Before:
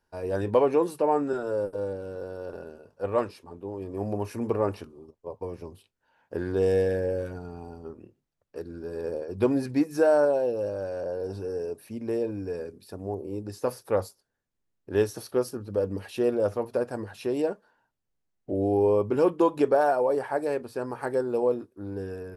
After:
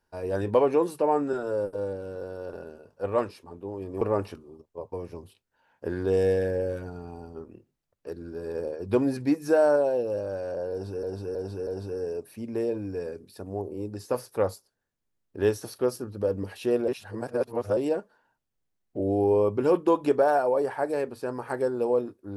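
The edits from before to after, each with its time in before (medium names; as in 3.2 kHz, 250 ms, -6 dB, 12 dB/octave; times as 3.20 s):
4.01–4.50 s: delete
11.20–11.52 s: loop, 4 plays
16.41–17.30 s: reverse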